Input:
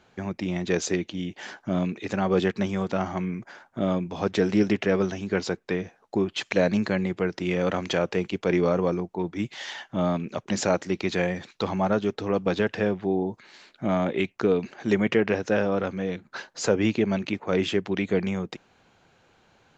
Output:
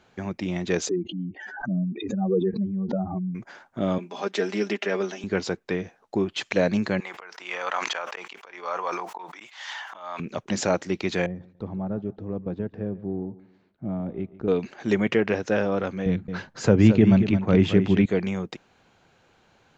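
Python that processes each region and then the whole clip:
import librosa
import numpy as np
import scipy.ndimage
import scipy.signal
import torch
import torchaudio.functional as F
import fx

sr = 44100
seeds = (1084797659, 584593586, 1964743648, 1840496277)

y = fx.chain(x, sr, fx.spec_expand(power=2.7),
    fx.peak_eq(hz=6600.0, db=12.0, octaves=0.28),
    fx.pre_swell(db_per_s=82.0), at=(0.89, 3.35))
y = fx.chain(y, sr, fx.highpass(hz=220.0, slope=24),
    fx.low_shelf(hz=410.0, db=-7.5),
    fx.comb(ms=5.0, depth=0.57), at=(3.98, 5.24))
y = fx.chain(y, sr, fx.auto_swell(attack_ms=348.0),
    fx.highpass_res(hz=1000.0, q=1.9),
    fx.sustainer(db_per_s=41.0), at=(7.0, 10.2))
y = fx.chain(y, sr, fx.halfwave_gain(db=-3.0),
    fx.bandpass_q(hz=110.0, q=0.55),
    fx.echo_feedback(ms=143, feedback_pct=33, wet_db=-18.5), at=(11.26, 14.48))
y = fx.chain(y, sr, fx.bass_treble(bass_db=14, treble_db=-6),
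    fx.echo_single(ms=221, db=-9.5), at=(16.06, 18.06))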